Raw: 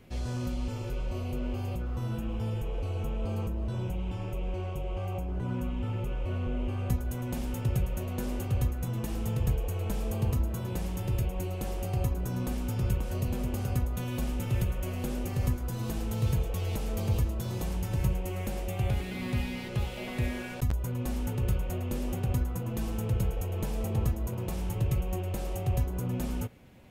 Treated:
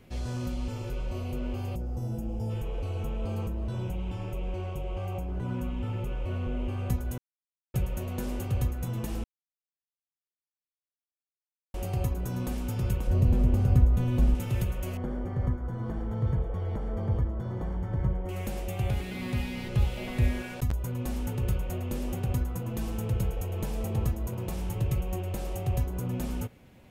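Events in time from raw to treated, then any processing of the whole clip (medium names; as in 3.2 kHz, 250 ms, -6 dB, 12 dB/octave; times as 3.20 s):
1.76–2.50 s: time-frequency box 930–4600 Hz -12 dB
7.18–7.74 s: mute
9.24–11.74 s: mute
13.07–14.35 s: tilt EQ -2.5 dB/octave
14.97–18.29 s: Savitzky-Golay filter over 41 samples
19.57–20.42 s: bass shelf 110 Hz +10 dB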